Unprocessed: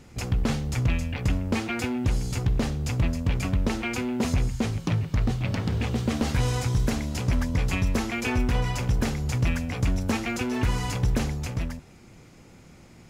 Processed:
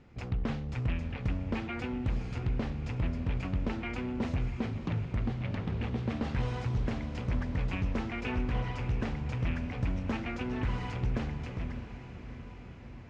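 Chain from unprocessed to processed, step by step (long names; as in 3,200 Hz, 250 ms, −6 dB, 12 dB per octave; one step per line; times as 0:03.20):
low-pass filter 3,000 Hz 12 dB per octave
on a send: feedback delay with all-pass diffusion 653 ms, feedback 66%, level −11.5 dB
on the sum: highs frequency-modulated by the lows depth 0.27 ms
level −7.5 dB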